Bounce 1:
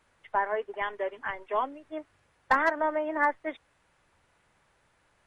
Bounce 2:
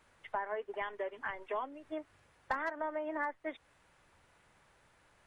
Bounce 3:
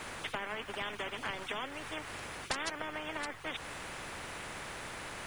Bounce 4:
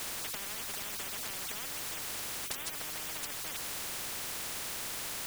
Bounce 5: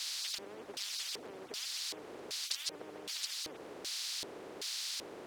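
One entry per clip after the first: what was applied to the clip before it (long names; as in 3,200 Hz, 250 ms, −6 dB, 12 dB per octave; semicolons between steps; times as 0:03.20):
downward compressor 3 to 1, threshold −38 dBFS, peak gain reduction 14.5 dB; level +1 dB
every bin compressed towards the loudest bin 4 to 1; level +4 dB
every bin compressed towards the loudest bin 10 to 1
auto-filter band-pass square 1.3 Hz 400–4,500 Hz; level +8 dB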